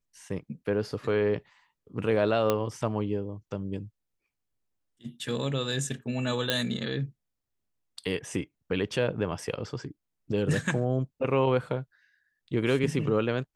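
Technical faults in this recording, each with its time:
2.5 pop -11 dBFS
6.5 pop -10 dBFS

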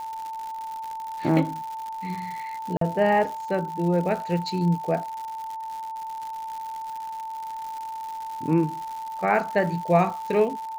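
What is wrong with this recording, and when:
crackle 180/s -32 dBFS
tone 890 Hz -31 dBFS
2.77–2.81 gap 43 ms

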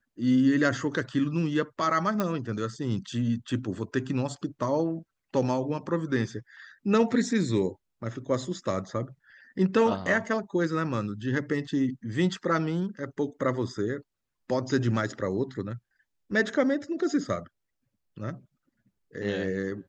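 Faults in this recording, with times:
2.2 pop -14 dBFS

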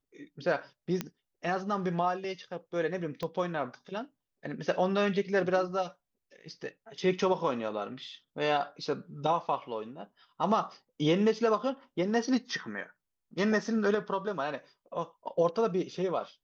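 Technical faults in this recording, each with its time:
1.01 pop -16 dBFS
3.23 pop -22 dBFS

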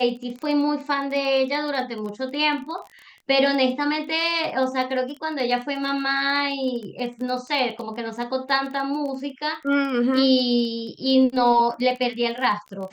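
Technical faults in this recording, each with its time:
crackle 17/s -30 dBFS

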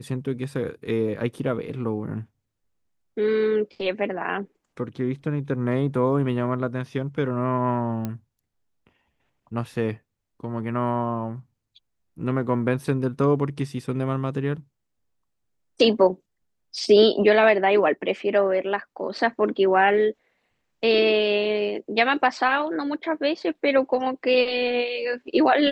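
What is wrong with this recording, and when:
8.05 pop -16 dBFS

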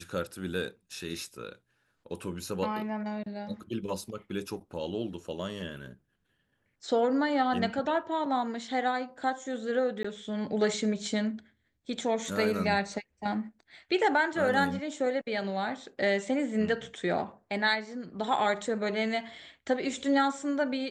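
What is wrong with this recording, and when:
10.03–10.04 gap 15 ms

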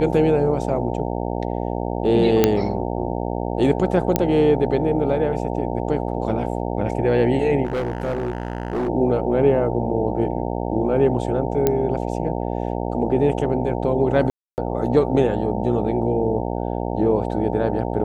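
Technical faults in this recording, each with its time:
buzz 60 Hz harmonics 15 -25 dBFS
2.44 pop -1 dBFS
4.16 pop -3 dBFS
7.64–8.89 clipped -20 dBFS
11.67 pop -5 dBFS
14.3–14.58 gap 0.279 s

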